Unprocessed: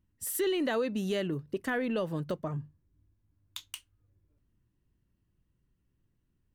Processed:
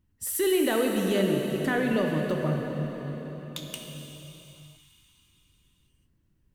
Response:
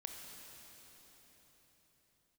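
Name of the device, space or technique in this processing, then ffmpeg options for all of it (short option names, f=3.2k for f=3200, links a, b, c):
cathedral: -filter_complex "[1:a]atrim=start_sample=2205[a];[0:a][a]afir=irnorm=-1:irlink=0,volume=8.5dB"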